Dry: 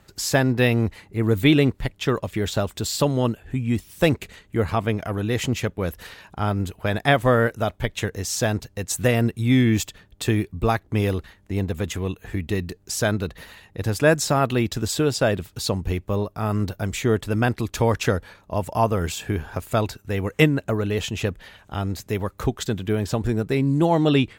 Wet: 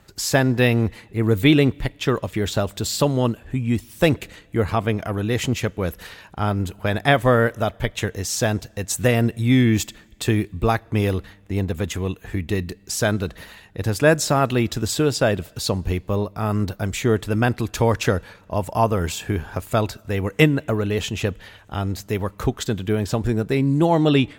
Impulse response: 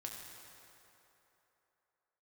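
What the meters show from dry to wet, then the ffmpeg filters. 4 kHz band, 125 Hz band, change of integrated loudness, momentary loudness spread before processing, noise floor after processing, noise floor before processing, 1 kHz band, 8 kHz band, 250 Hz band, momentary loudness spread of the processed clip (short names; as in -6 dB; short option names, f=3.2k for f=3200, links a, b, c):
+1.5 dB, +1.5 dB, +1.5 dB, 10 LU, -50 dBFS, -57 dBFS, +1.5 dB, +1.5 dB, +1.5 dB, 10 LU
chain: -filter_complex "[0:a]asplit=2[a][b];[1:a]atrim=start_sample=2205,asetrate=79380,aresample=44100,adelay=33[c];[b][c]afir=irnorm=-1:irlink=0,volume=-18dB[d];[a][d]amix=inputs=2:normalize=0,volume=1.5dB"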